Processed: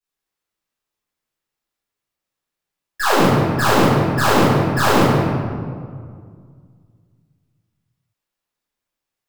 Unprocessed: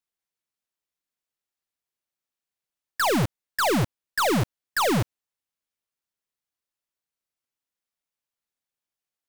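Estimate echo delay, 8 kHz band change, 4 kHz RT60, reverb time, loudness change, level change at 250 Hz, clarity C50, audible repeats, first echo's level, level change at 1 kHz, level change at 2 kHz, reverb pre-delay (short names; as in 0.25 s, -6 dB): none, +4.5 dB, 1.1 s, 2.0 s, +8.5 dB, +10.0 dB, -4.0 dB, none, none, +9.5 dB, +8.0 dB, 3 ms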